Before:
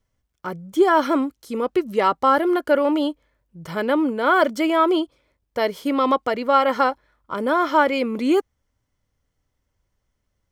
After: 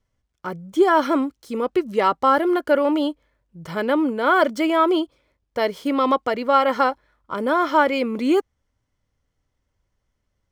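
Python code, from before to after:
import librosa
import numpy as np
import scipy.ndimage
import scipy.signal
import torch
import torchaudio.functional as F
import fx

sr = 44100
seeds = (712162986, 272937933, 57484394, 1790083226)

y = scipy.signal.medfilt(x, 3)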